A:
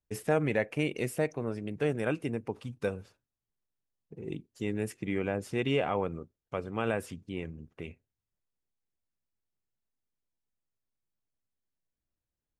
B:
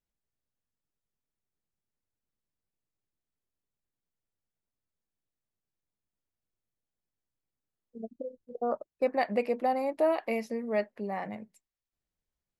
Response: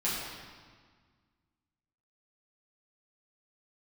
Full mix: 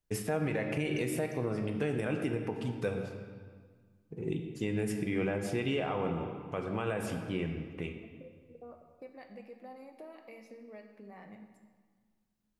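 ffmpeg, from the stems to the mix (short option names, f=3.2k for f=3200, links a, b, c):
-filter_complex "[0:a]alimiter=limit=-20.5dB:level=0:latency=1:release=140,volume=0.5dB,asplit=2[a][b];[b]volume=-9.5dB[c];[1:a]equalizer=f=750:t=o:w=0.77:g=-5.5,acompressor=threshold=-37dB:ratio=5,volume=-13dB,asplit=2[d][e];[e]volume=-9.5dB[f];[2:a]atrim=start_sample=2205[g];[c][f]amix=inputs=2:normalize=0[h];[h][g]afir=irnorm=-1:irlink=0[i];[a][d][i]amix=inputs=3:normalize=0,alimiter=limit=-22dB:level=0:latency=1:release=118"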